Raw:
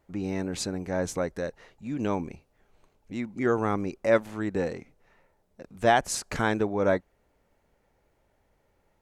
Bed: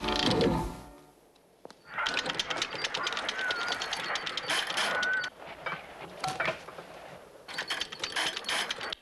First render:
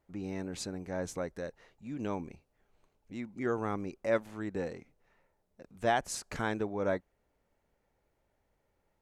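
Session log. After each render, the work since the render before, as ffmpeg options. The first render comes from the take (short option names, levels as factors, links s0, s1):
-af "volume=0.422"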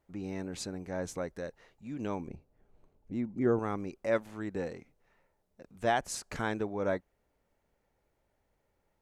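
-filter_complex "[0:a]asettb=1/sr,asplit=3[s0][s1][s2];[s0]atrim=end=2.284[s3];[s1]atrim=start=2.28:end=3.59,asetpts=PTS-STARTPTS,afade=t=in:d=0.004:c=qsin,afade=t=out:st=1.306:d=0.004:c=qsin,tiltshelf=f=970:g=7.5[s4];[s2]atrim=start=3.586[s5];[s3][s4]acrossfade=d=0.004:c1=hsin:c2=qsin[s6];[s6][s5]acrossfade=d=0.004:c1=qsin:c2=hsin"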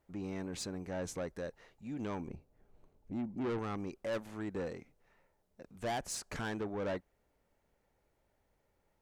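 -af "asoftclip=type=tanh:threshold=0.0237"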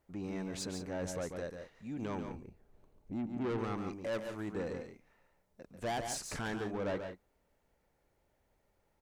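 -af "aecho=1:1:141|174:0.447|0.224"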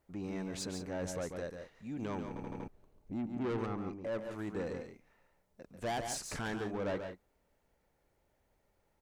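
-filter_complex "[0:a]asettb=1/sr,asplit=3[s0][s1][s2];[s0]atrim=end=3.664[s3];[s1]atrim=start=3.66:end=4.31,asetpts=PTS-STARTPTS,afade=t=in:d=0.004:c=qsin,afade=t=out:st=0.646:d=0.004:c=qsin,highshelf=f=2400:g=-12[s4];[s2]atrim=start=4.306[s5];[s3][s4]acrossfade=d=0.004:c1=hsin:c2=qsin[s6];[s6][s5]acrossfade=d=0.004:c1=qsin:c2=hsin,asplit=6[s7][s8][s9][s10][s11][s12];[s7]atrim=end=2.362[s13];[s8]atrim=start=2.278:end=2.362[s14];[s9]atrim=start=2.278:end=2.362[s15];[s10]atrim=start=2.278:end=2.362[s16];[s11]atrim=start=2.278:end=2.362[s17];[s12]atrim=start=2.678[s18];[s13][s14]acrossfade=d=0.004:c1=hsin:c2=hsin[s19];[s19][s15]acrossfade=d=0.004:c1=hsin:c2=hsin[s20];[s20][s16]acrossfade=d=0.004:c1=hsin:c2=hsin[s21];[s21][s17]acrossfade=d=0.004:c1=hsin:c2=hsin[s22];[s22][s18]acrossfade=d=0.004:c1=hsin:c2=hsin"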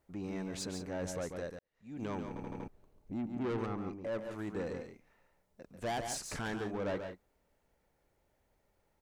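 -filter_complex "[0:a]asplit=2[s0][s1];[s0]atrim=end=1.59,asetpts=PTS-STARTPTS,afade=t=out:st=1.586:d=0.004:c=hsin[s2];[s1]atrim=start=1.59,asetpts=PTS-STARTPTS,afade=t=in:d=0.44:c=qua[s3];[s2][s3]concat=n=2:v=0:a=1"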